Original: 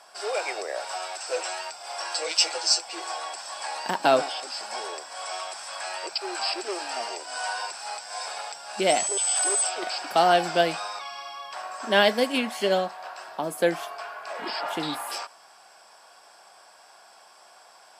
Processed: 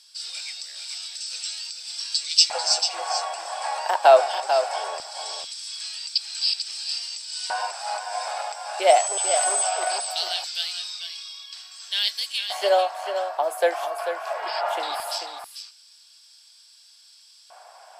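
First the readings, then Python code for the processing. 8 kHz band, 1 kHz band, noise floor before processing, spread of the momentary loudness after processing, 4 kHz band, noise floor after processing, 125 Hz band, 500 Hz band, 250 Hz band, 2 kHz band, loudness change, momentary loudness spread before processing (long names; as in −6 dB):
+1.0 dB, +3.0 dB, −53 dBFS, 14 LU, +4.5 dB, −53 dBFS, below −30 dB, +2.5 dB, below −15 dB, −2.5 dB, +2.5 dB, 14 LU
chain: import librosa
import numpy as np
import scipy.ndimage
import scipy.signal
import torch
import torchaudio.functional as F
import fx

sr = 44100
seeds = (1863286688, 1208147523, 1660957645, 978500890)

p1 = scipy.signal.sosfilt(scipy.signal.butter(4, 340.0, 'highpass', fs=sr, output='sos'), x)
p2 = fx.filter_lfo_highpass(p1, sr, shape='square', hz=0.2, low_hz=660.0, high_hz=4000.0, q=2.5)
y = p2 + fx.echo_single(p2, sr, ms=442, db=-8.0, dry=0)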